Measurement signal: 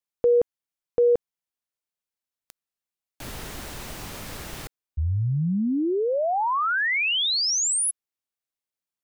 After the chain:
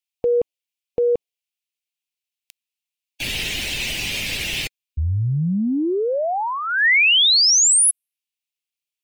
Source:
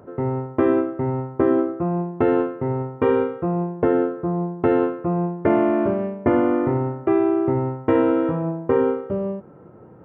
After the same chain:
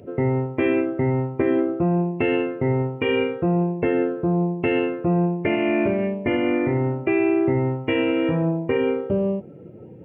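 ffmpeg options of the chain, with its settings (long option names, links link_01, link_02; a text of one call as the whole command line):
ffmpeg -i in.wav -filter_complex "[0:a]afftdn=noise_reduction=16:noise_floor=-44,highshelf=frequency=1800:width_type=q:width=3:gain=12.5,asplit=2[link_01][link_02];[link_02]acompressor=threshold=-27dB:ratio=6:attack=6.6:release=35:knee=1:detection=peak,volume=-2dB[link_03];[link_01][link_03]amix=inputs=2:normalize=0,alimiter=limit=-11.5dB:level=0:latency=1:release=296" out.wav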